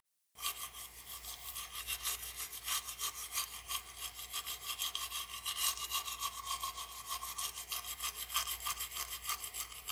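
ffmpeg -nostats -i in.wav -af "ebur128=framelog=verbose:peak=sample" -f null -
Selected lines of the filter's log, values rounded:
Integrated loudness:
  I:         -39.1 LUFS
  Threshold: -49.1 LUFS
Loudness range:
  LRA:         1.8 LU
  Threshold: -58.8 LUFS
  LRA low:   -39.9 LUFS
  LRA high:  -38.1 LUFS
Sample peak:
  Peak:      -19.9 dBFS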